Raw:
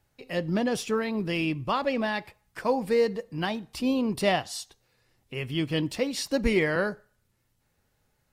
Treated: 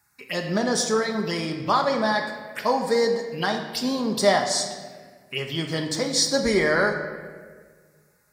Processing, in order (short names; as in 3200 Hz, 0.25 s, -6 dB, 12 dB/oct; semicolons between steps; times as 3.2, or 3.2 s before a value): HPF 72 Hz; tilt shelf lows -7.5 dB, about 690 Hz; envelope phaser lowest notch 530 Hz, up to 2700 Hz, full sweep at -28 dBFS; reverb RT60 1.6 s, pre-delay 5 ms, DRR 2.5 dB; gain +5 dB